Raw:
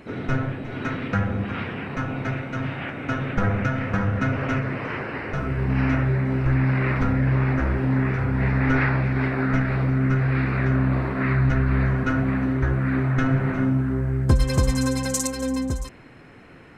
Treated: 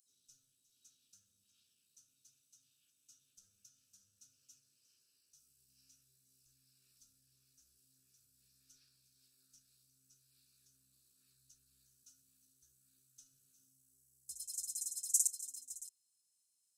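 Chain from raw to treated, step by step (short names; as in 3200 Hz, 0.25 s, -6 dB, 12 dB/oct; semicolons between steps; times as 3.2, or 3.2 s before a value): inverse Chebyshev high-pass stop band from 2200 Hz, stop band 60 dB; gain -1.5 dB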